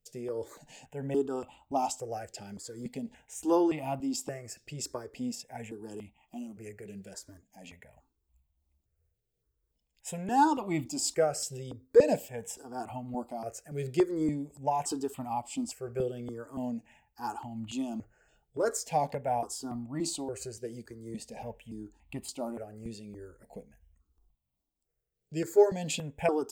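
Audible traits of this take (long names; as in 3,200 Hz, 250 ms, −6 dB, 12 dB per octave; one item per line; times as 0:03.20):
tremolo triangle 2.9 Hz, depth 45%
notches that jump at a steady rate 3.5 Hz 270–1,600 Hz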